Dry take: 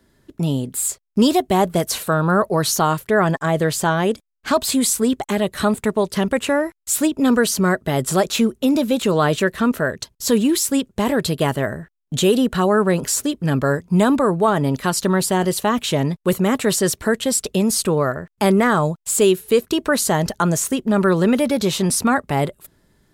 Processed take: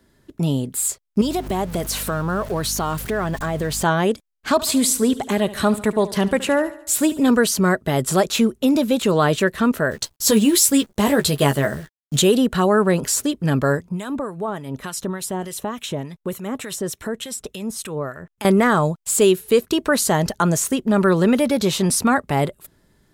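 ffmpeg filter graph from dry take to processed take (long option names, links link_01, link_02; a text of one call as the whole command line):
ffmpeg -i in.wav -filter_complex "[0:a]asettb=1/sr,asplit=3[link_01][link_02][link_03];[link_01]atrim=end=1.214[link_04];[link_02]atrim=start=1.21:end=3.83,asetpts=PTS-STARTPTS,afade=type=in:duration=0.004:curve=qsin,afade=type=out:start_time=2.616:duration=0.004:curve=qsin,aeval=exprs='val(0)+0.5*0.0335*sgn(val(0))':channel_layout=same,acompressor=threshold=-22dB:ratio=2.5:attack=3.2:release=140:knee=1:detection=peak,aeval=exprs='val(0)+0.02*(sin(2*PI*50*n/s)+sin(2*PI*2*50*n/s)/2+sin(2*PI*3*50*n/s)/3+sin(2*PI*4*50*n/s)/4+sin(2*PI*5*50*n/s)/5)':channel_layout=same[link_05];[link_03]atrim=start=3.826[link_06];[link_04][link_05]acrossfade=duration=0.004:curve1=hsin:curve2=qsin[link_07];[link_07][link_06]acrossfade=duration=0.004:curve1=qsin:curve2=hsin,asettb=1/sr,asplit=3[link_08][link_09][link_10];[link_08]atrim=end=4.524[link_11];[link_09]atrim=start=4.52:end=7.31,asetpts=PTS-STARTPTS,afade=type=in:duration=0.004:curve=qsin,afade=type=out:start_time=2.786:duration=0.004:curve=qsin,bandreject=frequency=1300:width=28,aecho=1:1:72|144|216|288|360:0.15|0.0778|0.0405|0.021|0.0109,atrim=end_sample=123039[link_12];[link_10]atrim=start=7.306[link_13];[link_11][link_12]acrossfade=duration=0.004:curve1=hsin:curve2=qsin[link_14];[link_14][link_13]acrossfade=duration=0.004:curve1=qsin:curve2=hsin,asettb=1/sr,asplit=3[link_15][link_16][link_17];[link_15]atrim=end=9.914[link_18];[link_16]atrim=start=9.91:end=12.22,asetpts=PTS-STARTPTS,afade=type=in:duration=0.004:curve=qsin,afade=type=out:start_time=2.306:duration=0.004:curve=qsin,highshelf=frequency=3800:gain=5.5,acrusher=bits=8:dc=4:mix=0:aa=0.000001,asplit=2[link_19][link_20];[link_20]adelay=14,volume=-5.5dB[link_21];[link_19][link_21]amix=inputs=2:normalize=0,atrim=end_sample=101871[link_22];[link_17]atrim=start=12.216[link_23];[link_18][link_22]acrossfade=duration=0.004:curve1=hsin:curve2=qsin[link_24];[link_24][link_23]acrossfade=duration=0.004:curve1=qsin:curve2=hsin,asettb=1/sr,asplit=3[link_25][link_26][link_27];[link_25]atrim=end=13.894[link_28];[link_26]atrim=start=13.89:end=18.45,asetpts=PTS-STARTPTS,afade=type=in:duration=0.004:curve=qsin,afade=type=out:start_time=4.556:duration=0.004:curve=qsin,bandreject=frequency=4600:width=7.2,acompressor=threshold=-25dB:ratio=2:attack=3.2:release=140:knee=1:detection=peak,acrossover=split=1300[link_29][link_30];[link_29]aeval=exprs='val(0)*(1-0.7/2+0.7/2*cos(2*PI*3.4*n/s))':channel_layout=same[link_31];[link_30]aeval=exprs='val(0)*(1-0.7/2-0.7/2*cos(2*PI*3.4*n/s))':channel_layout=same[link_32];[link_31][link_32]amix=inputs=2:normalize=0[link_33];[link_27]atrim=start=18.446[link_34];[link_28][link_33]acrossfade=duration=0.004:curve1=hsin:curve2=qsin[link_35];[link_35][link_34]acrossfade=duration=0.004:curve1=qsin:curve2=hsin" out.wav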